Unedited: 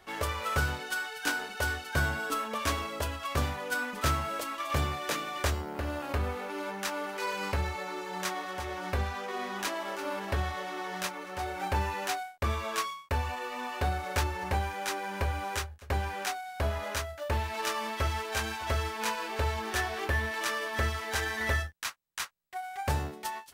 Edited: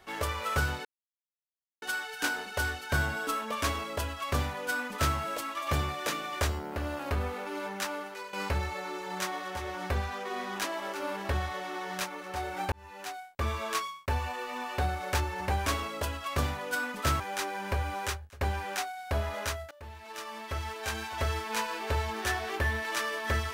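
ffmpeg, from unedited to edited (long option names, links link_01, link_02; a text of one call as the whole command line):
ffmpeg -i in.wav -filter_complex "[0:a]asplit=7[link_01][link_02][link_03][link_04][link_05][link_06][link_07];[link_01]atrim=end=0.85,asetpts=PTS-STARTPTS,afade=type=out:start_time=0.846:duration=0.004:curve=hsin,apad=pad_dur=0.97[link_08];[link_02]atrim=start=0.85:end=7.36,asetpts=PTS-STARTPTS,afade=type=in:duration=0.004:curve=hsin,afade=type=out:start_time=6.04:duration=0.47:silence=0.199526[link_09];[link_03]atrim=start=7.36:end=11.75,asetpts=PTS-STARTPTS,afade=type=in:duration=0.004:curve=hsin:silence=0.199526,afade=type=out:start_time=4.386:duration=0.004:curve=hsin[link_10];[link_04]atrim=start=11.75:end=14.692,asetpts=PTS-STARTPTS,afade=type=in:duration=0.83[link_11];[link_05]atrim=start=2.648:end=4.192[link_12];[link_06]atrim=start=14.688:end=17.2,asetpts=PTS-STARTPTS,afade=type=out:start_time=2.508:duration=0.004:curve=hsin:silence=0.0841395[link_13];[link_07]atrim=start=17.2,asetpts=PTS-STARTPTS,afade=type=in:duration=1.63:silence=0.0841395[link_14];[link_08][link_09][link_10][link_11]concat=n=4:v=0:a=1[link_15];[link_15][link_12]acrossfade=duration=0.004:curve1=hsin:curve2=hsin[link_16];[link_13][link_14]concat=n=2:v=0:a=1[link_17];[link_16][link_17]acrossfade=duration=0.004:curve1=hsin:curve2=hsin" out.wav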